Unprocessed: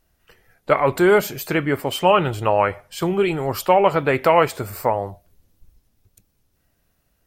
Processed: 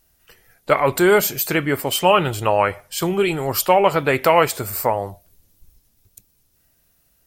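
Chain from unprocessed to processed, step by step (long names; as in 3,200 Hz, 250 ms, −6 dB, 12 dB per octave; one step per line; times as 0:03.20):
high-shelf EQ 4,000 Hz +11 dB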